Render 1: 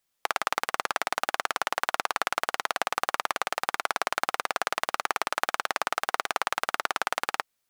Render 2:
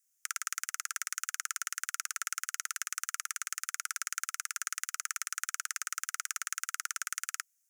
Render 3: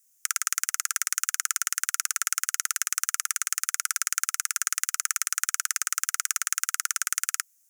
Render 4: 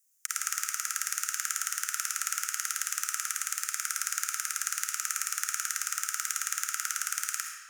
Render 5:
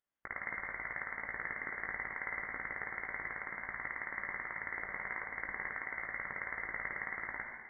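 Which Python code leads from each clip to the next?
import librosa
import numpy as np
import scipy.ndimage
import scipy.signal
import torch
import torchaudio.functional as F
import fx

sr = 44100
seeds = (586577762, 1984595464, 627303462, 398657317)

y1 = scipy.signal.sosfilt(scipy.signal.butter(16, 1300.0, 'highpass', fs=sr, output='sos'), x)
y1 = fx.high_shelf_res(y1, sr, hz=5100.0, db=9.0, q=3.0)
y1 = fx.notch(y1, sr, hz=8000.0, q=22.0)
y1 = y1 * 10.0 ** (-7.5 / 20.0)
y2 = fx.high_shelf(y1, sr, hz=5500.0, db=7.0)
y2 = y2 * 10.0 ** (5.5 / 20.0)
y3 = fx.rev_freeverb(y2, sr, rt60_s=1.5, hf_ratio=0.8, predelay_ms=25, drr_db=1.5)
y3 = y3 * 10.0 ** (-6.0 / 20.0)
y4 = fx.freq_invert(y3, sr, carrier_hz=3400)
y4 = y4 + 10.0 ** (-15.0 / 20.0) * np.pad(y4, (int(525 * sr / 1000.0), 0))[:len(y4)]
y4 = fx.chorus_voices(y4, sr, voices=4, hz=0.73, base_ms=18, depth_ms=2.8, mix_pct=35)
y4 = y4 * 10.0 ** (1.0 / 20.0)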